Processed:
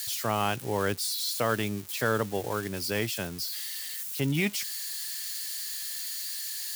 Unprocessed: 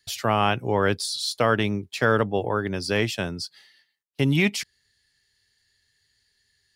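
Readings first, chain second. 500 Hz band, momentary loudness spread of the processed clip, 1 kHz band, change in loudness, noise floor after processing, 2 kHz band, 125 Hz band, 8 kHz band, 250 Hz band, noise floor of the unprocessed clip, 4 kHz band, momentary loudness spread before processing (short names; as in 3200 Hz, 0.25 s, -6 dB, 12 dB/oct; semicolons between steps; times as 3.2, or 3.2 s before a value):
-6.5 dB, 5 LU, -6.5 dB, -6.0 dB, -38 dBFS, -6.0 dB, -6.5 dB, +4.0 dB, -6.5 dB, -71 dBFS, -2.5 dB, 11 LU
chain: switching spikes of -21.5 dBFS; gain -6.5 dB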